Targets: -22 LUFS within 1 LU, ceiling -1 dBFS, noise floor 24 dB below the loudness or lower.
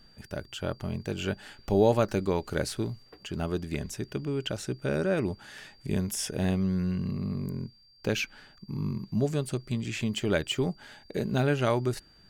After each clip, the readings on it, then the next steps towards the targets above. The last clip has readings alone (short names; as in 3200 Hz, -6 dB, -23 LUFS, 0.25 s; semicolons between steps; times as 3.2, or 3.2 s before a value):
steady tone 4700 Hz; tone level -58 dBFS; loudness -30.5 LUFS; peak -10.5 dBFS; loudness target -22.0 LUFS
-> notch 4700 Hz, Q 30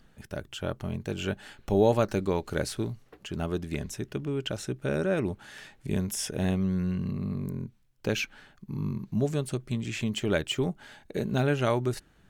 steady tone none; loudness -30.5 LUFS; peak -10.5 dBFS; loudness target -22.0 LUFS
-> gain +8.5 dB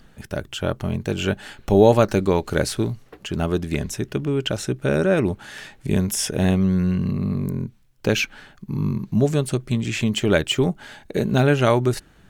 loudness -22.0 LUFS; peak -2.0 dBFS; noise floor -53 dBFS